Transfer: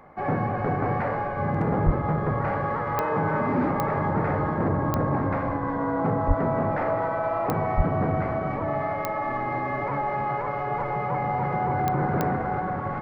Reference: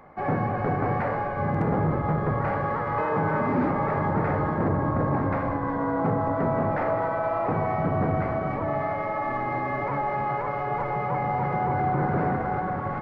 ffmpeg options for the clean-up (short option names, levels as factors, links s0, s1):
-filter_complex "[0:a]adeclick=t=4,asplit=3[s0][s1][s2];[s0]afade=t=out:st=1.85:d=0.02[s3];[s1]highpass=f=140:w=0.5412,highpass=f=140:w=1.3066,afade=t=in:st=1.85:d=0.02,afade=t=out:st=1.97:d=0.02[s4];[s2]afade=t=in:st=1.97:d=0.02[s5];[s3][s4][s5]amix=inputs=3:normalize=0,asplit=3[s6][s7][s8];[s6]afade=t=out:st=6.27:d=0.02[s9];[s7]highpass=f=140:w=0.5412,highpass=f=140:w=1.3066,afade=t=in:st=6.27:d=0.02,afade=t=out:st=6.39:d=0.02[s10];[s8]afade=t=in:st=6.39:d=0.02[s11];[s9][s10][s11]amix=inputs=3:normalize=0,asplit=3[s12][s13][s14];[s12]afade=t=out:st=7.76:d=0.02[s15];[s13]highpass=f=140:w=0.5412,highpass=f=140:w=1.3066,afade=t=in:st=7.76:d=0.02,afade=t=out:st=7.88:d=0.02[s16];[s14]afade=t=in:st=7.88:d=0.02[s17];[s15][s16][s17]amix=inputs=3:normalize=0"